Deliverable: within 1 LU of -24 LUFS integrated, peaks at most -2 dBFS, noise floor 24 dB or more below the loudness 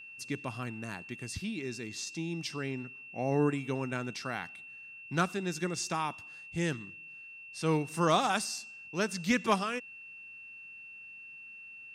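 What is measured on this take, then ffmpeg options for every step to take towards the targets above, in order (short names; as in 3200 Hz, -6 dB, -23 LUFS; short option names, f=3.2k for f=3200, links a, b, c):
steady tone 2700 Hz; tone level -46 dBFS; loudness -33.5 LUFS; peak -15.5 dBFS; loudness target -24.0 LUFS
-> -af "bandreject=f=2.7k:w=30"
-af "volume=9.5dB"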